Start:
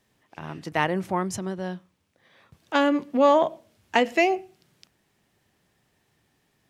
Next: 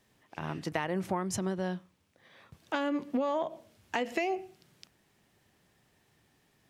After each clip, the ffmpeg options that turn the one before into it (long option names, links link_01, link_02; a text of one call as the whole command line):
ffmpeg -i in.wav -af "alimiter=limit=-14dB:level=0:latency=1:release=189,acompressor=threshold=-27dB:ratio=6" out.wav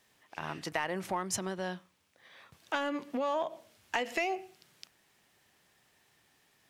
ffmpeg -i in.wav -filter_complex "[0:a]lowshelf=frequency=480:gain=-11.5,asplit=2[link_01][link_02];[link_02]asoftclip=type=hard:threshold=-30.5dB,volume=-6dB[link_03];[link_01][link_03]amix=inputs=2:normalize=0" out.wav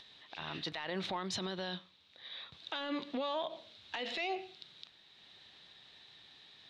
ffmpeg -i in.wav -af "lowpass=frequency=3800:width_type=q:width=9.4,acompressor=mode=upward:threshold=-52dB:ratio=2.5,alimiter=level_in=4dB:limit=-24dB:level=0:latency=1:release=30,volume=-4dB" out.wav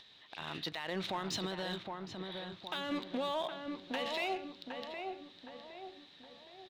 ffmpeg -i in.wav -filter_complex "[0:a]asplit=2[link_01][link_02];[link_02]acrusher=bits=5:mix=0:aa=0.5,volume=-12dB[link_03];[link_01][link_03]amix=inputs=2:normalize=0,asplit=2[link_04][link_05];[link_05]adelay=765,lowpass=frequency=1600:poles=1,volume=-4dB,asplit=2[link_06][link_07];[link_07]adelay=765,lowpass=frequency=1600:poles=1,volume=0.5,asplit=2[link_08][link_09];[link_09]adelay=765,lowpass=frequency=1600:poles=1,volume=0.5,asplit=2[link_10][link_11];[link_11]adelay=765,lowpass=frequency=1600:poles=1,volume=0.5,asplit=2[link_12][link_13];[link_13]adelay=765,lowpass=frequency=1600:poles=1,volume=0.5,asplit=2[link_14][link_15];[link_15]adelay=765,lowpass=frequency=1600:poles=1,volume=0.5[link_16];[link_04][link_06][link_08][link_10][link_12][link_14][link_16]amix=inputs=7:normalize=0,volume=-1.5dB" out.wav